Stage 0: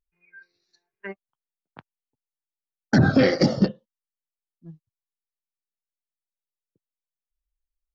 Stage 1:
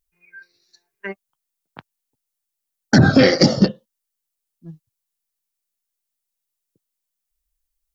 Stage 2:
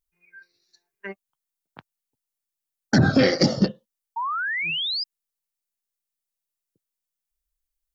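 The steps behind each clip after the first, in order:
treble shelf 4.9 kHz +11.5 dB; trim +5 dB
painted sound rise, 4.16–5.04 s, 890–5100 Hz -21 dBFS; trim -5.5 dB

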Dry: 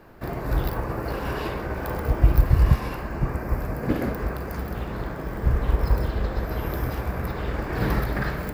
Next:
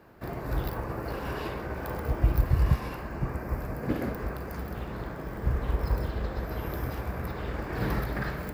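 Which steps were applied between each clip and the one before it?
high-pass 42 Hz; trim -5 dB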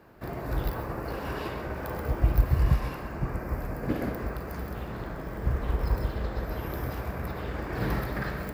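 reverberation RT60 0.25 s, pre-delay 95 ms, DRR 9.5 dB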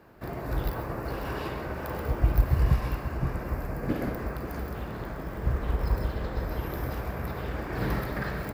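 delay 541 ms -11 dB

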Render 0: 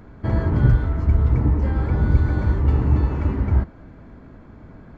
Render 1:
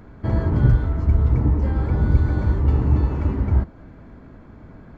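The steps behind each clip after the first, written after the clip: dynamic bell 1.9 kHz, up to -3 dB, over -48 dBFS, Q 0.95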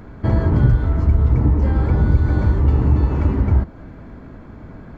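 compression 2:1, threshold -18 dBFS, peak gain reduction 5.5 dB; trim +5.5 dB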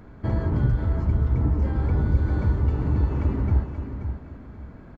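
feedback delay 531 ms, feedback 26%, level -8 dB; trim -7.5 dB

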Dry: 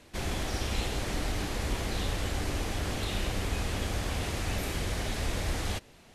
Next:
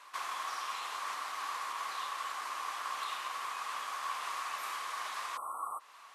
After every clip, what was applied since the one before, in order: spectral selection erased 5.37–5.80 s, 1.4–7.8 kHz; compression 2:1, threshold -39 dBFS, peak gain reduction 8 dB; resonant high-pass 1.1 kHz, resonance Q 10; trim -1 dB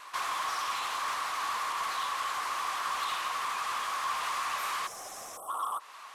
in parallel at -9 dB: wavefolder -38.5 dBFS; on the sum: time-frequency box 4.87–5.48 s, 820–5100 Hz -15 dB; vibrato 12 Hz 58 cents; trim +4.5 dB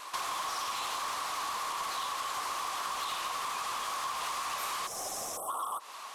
compression, threshold -36 dBFS, peak gain reduction 7.5 dB; peaking EQ 1.7 kHz -7.5 dB 1.6 oct; trim +7.5 dB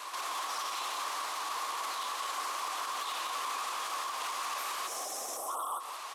high-pass 260 Hz 24 dB/octave; peak limiter -31.5 dBFS, peak gain reduction 7.5 dB; delay 179 ms -7.5 dB; trim +2 dB

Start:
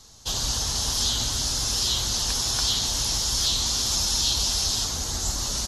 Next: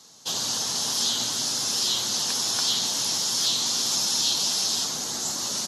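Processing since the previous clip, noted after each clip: high-pass 160 Hz 24 dB/octave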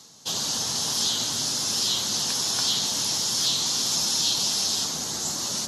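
bass shelf 180 Hz +8 dB; de-hum 59.65 Hz, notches 30; reverse; upward compressor, threshold -36 dBFS; reverse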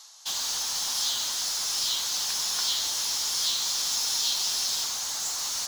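high-pass 790 Hz 24 dB/octave; in parallel at -6.5 dB: integer overflow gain 25.5 dB; on the sum: trim -3 dB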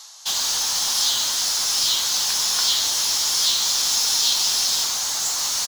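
doubling 21 ms -13 dB; trim +7 dB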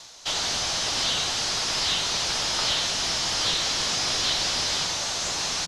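CVSD coder 64 kbps; distance through air 63 m; frequency shift -180 Hz

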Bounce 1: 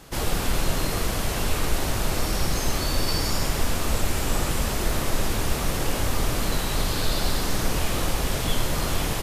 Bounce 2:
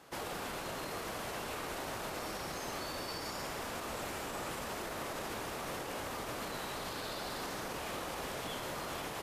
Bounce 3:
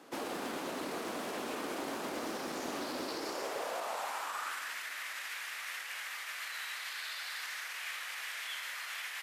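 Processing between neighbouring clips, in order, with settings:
high-pass 760 Hz 6 dB/octave; treble shelf 2.1 kHz -12 dB; peak limiter -29 dBFS, peak gain reduction 5.5 dB; trim -2 dB
high-pass sweep 260 Hz -> 1.9 kHz, 3.02–4.79 s; on a send at -16 dB: reverberation RT60 3.4 s, pre-delay 4 ms; on the sum: loudspeaker Doppler distortion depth 0.22 ms

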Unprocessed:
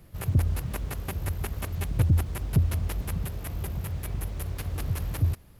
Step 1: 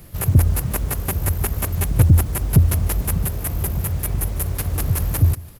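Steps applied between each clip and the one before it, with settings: treble shelf 5.5 kHz +8.5 dB; delay 149 ms -21 dB; dynamic bell 3.6 kHz, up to -5 dB, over -53 dBFS, Q 0.8; trim +9 dB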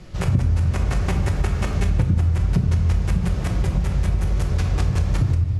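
low-pass 6.6 kHz 24 dB/octave; simulated room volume 410 m³, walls mixed, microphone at 0.99 m; compression 6:1, threshold -17 dBFS, peak gain reduction 11 dB; trim +1.5 dB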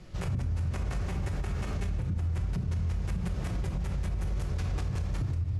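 peak limiter -16.5 dBFS, peak gain reduction 9.5 dB; trim -7.5 dB

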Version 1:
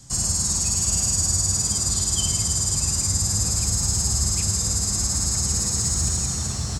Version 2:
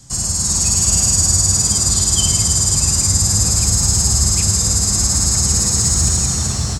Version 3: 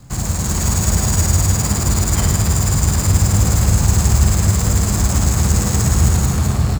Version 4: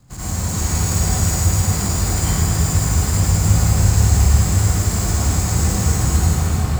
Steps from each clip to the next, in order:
level rider gain up to 5 dB; trim +3 dB
median filter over 15 samples; trim +5 dB
reverberation RT60 0.55 s, pre-delay 73 ms, DRR -8 dB; trim -10 dB

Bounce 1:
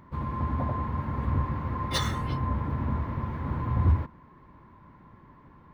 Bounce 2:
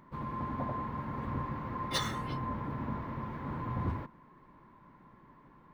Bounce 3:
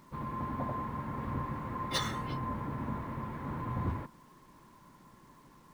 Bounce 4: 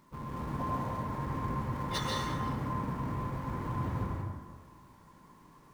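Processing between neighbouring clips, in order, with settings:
peaking EQ 75 Hz -14.5 dB 0.89 oct; trim -3.5 dB
bit crusher 11-bit
in parallel at -9 dB: Schmitt trigger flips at -37.5 dBFS; on the sum: plate-style reverb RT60 1.5 s, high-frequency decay 0.5×, pre-delay 115 ms, DRR -2.5 dB; trim -4.5 dB

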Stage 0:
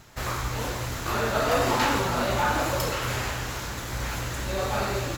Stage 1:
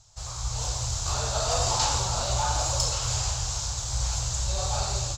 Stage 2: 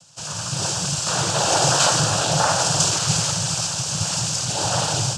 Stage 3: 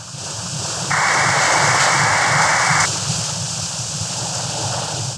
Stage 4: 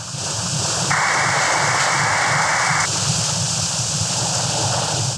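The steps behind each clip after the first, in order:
FFT filter 100 Hz 0 dB, 270 Hz -25 dB, 760 Hz -6 dB, 1.2 kHz -11 dB, 1.9 kHz -20 dB, 4.8 kHz +3 dB, 7.4 kHz +6 dB, 12 kHz -22 dB; level rider gain up to 8.5 dB; trim -3.5 dB
noise-vocoded speech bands 8; trim +8.5 dB
reverse echo 385 ms -4 dB; painted sound noise, 0.90–2.86 s, 720–2300 Hz -16 dBFS; trim -1.5 dB
compression, threshold -18 dBFS, peak gain reduction 7 dB; trim +3.5 dB

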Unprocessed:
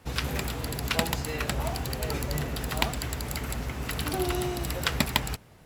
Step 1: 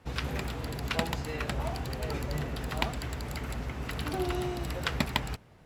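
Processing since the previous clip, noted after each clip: low-pass 3.6 kHz 6 dB/octave; trim -2.5 dB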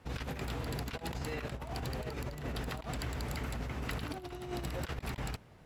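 compressor with a negative ratio -35 dBFS, ratio -0.5; trim -3 dB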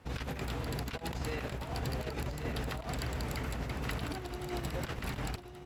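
delay 1131 ms -7 dB; trim +1 dB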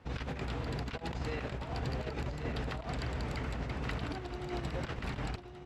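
distance through air 84 m

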